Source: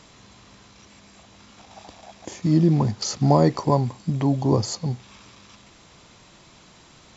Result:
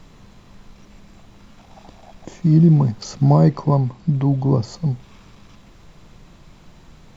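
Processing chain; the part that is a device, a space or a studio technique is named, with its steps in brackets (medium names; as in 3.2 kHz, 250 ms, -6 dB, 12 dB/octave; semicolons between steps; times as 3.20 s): car interior (peaking EQ 160 Hz +8.5 dB 0.81 oct; treble shelf 3.6 kHz -7.5 dB; brown noise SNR 25 dB); 3.50–4.74 s: low-pass 6 kHz 12 dB/octave; trim -1 dB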